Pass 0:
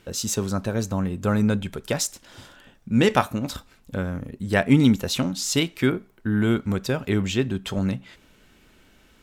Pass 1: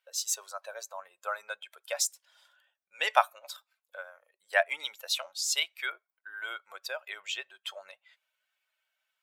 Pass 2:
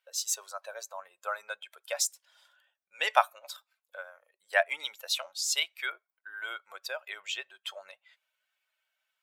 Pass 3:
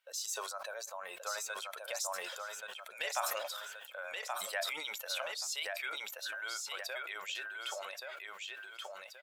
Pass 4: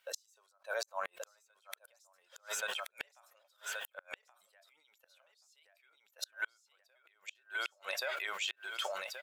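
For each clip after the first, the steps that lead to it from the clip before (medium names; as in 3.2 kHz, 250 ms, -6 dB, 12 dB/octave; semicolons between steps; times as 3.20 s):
expander on every frequency bin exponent 1.5; elliptic high-pass 620 Hz, stop band 60 dB
no audible change
compression 2.5:1, threshold -43 dBFS, peak gain reduction 18 dB; feedback delay 1128 ms, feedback 18%, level -4 dB; decay stretcher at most 28 dB/s; trim +1 dB
inverted gate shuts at -31 dBFS, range -38 dB; trim +8 dB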